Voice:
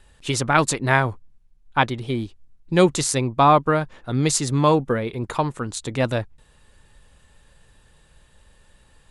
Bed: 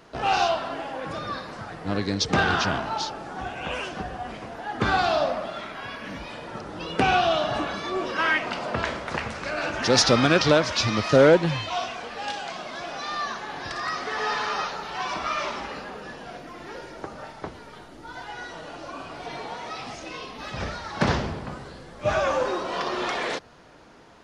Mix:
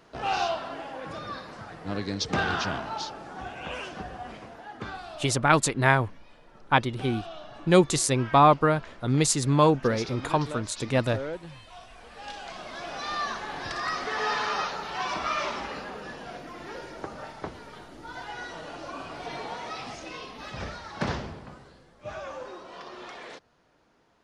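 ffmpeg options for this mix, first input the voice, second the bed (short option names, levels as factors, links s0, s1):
-filter_complex "[0:a]adelay=4950,volume=0.75[s0];[1:a]volume=4.47,afade=t=out:st=4.31:d=0.69:silence=0.199526,afade=t=in:st=11.87:d=1.27:silence=0.125893,afade=t=out:st=19.53:d=2.45:silence=0.211349[s1];[s0][s1]amix=inputs=2:normalize=0"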